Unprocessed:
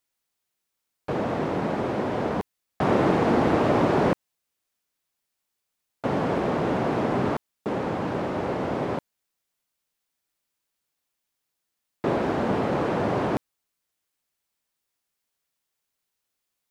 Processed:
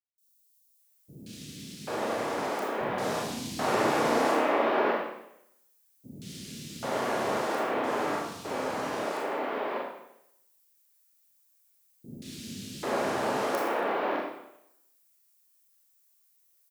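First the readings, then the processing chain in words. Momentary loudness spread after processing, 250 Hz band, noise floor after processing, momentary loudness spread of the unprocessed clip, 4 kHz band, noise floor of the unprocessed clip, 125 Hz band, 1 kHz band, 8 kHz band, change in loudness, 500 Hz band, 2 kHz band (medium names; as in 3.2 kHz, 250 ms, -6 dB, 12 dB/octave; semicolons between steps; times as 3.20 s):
18 LU, -8.5 dB, -67 dBFS, 11 LU, +2.5 dB, -82 dBFS, -14.0 dB, -1.5 dB, no reading, -4.5 dB, -3.5 dB, +0.5 dB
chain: RIAA curve recording; three bands offset in time lows, highs, mids 180/790 ms, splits 220/3300 Hz; Schroeder reverb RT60 0.8 s, combs from 27 ms, DRR -3 dB; trim -5.5 dB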